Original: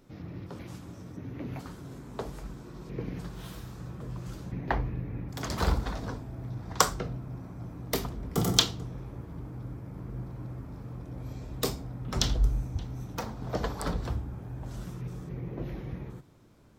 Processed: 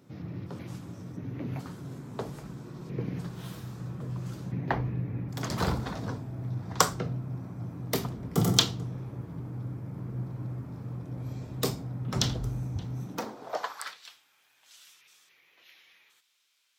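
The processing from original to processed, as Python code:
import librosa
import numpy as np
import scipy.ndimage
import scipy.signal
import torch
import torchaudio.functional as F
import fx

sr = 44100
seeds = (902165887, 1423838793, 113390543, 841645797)

y = fx.filter_sweep_highpass(x, sr, from_hz=120.0, to_hz=2900.0, start_s=12.96, end_s=14.02, q=1.6)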